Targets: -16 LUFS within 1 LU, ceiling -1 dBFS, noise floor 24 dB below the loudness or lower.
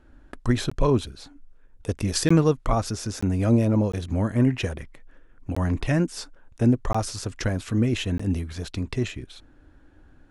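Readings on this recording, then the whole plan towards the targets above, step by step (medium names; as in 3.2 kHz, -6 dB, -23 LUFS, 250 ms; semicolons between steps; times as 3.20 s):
dropouts 7; longest dropout 15 ms; loudness -25.0 LUFS; peak level -6.0 dBFS; loudness target -16.0 LUFS
-> interpolate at 0.70/2.29/3.21/3.92/5.55/6.93/8.18 s, 15 ms; trim +9 dB; peak limiter -1 dBFS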